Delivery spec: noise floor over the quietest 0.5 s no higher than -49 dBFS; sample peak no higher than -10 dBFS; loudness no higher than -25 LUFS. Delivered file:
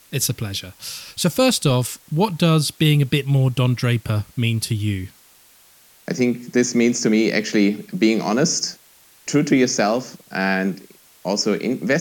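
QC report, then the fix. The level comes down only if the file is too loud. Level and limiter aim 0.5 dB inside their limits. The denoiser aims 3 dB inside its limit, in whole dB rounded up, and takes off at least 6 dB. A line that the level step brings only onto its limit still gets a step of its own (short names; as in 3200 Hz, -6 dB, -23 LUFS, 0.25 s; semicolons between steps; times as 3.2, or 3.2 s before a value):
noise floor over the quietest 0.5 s -52 dBFS: OK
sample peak -4.5 dBFS: fail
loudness -20.0 LUFS: fail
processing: gain -5.5 dB; limiter -10.5 dBFS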